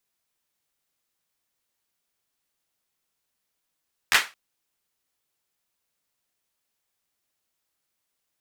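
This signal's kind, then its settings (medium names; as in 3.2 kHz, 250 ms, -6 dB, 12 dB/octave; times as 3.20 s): hand clap length 0.22 s, bursts 3, apart 12 ms, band 1.8 kHz, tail 0.26 s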